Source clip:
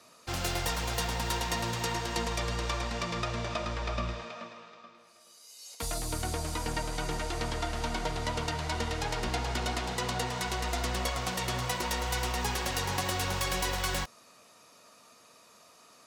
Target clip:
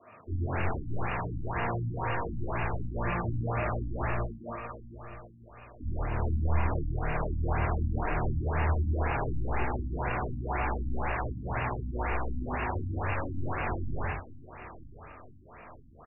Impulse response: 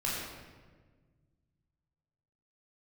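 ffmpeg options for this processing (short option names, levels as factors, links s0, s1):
-filter_complex "[0:a]equalizer=f=89:t=o:w=0.29:g=8.5,aeval=exprs='0.0237*(abs(mod(val(0)/0.0237+3,4)-2)-1)':c=same,aecho=1:1:925|1850|2775|3700:0.158|0.0792|0.0396|0.0198[s0];[1:a]atrim=start_sample=2205,atrim=end_sample=4410,asetrate=27342,aresample=44100[s1];[s0][s1]afir=irnorm=-1:irlink=0,afftfilt=real='re*lt(b*sr/1024,300*pow(2900/300,0.5+0.5*sin(2*PI*2*pts/sr)))':imag='im*lt(b*sr/1024,300*pow(2900/300,0.5+0.5*sin(2*PI*2*pts/sr)))':win_size=1024:overlap=0.75"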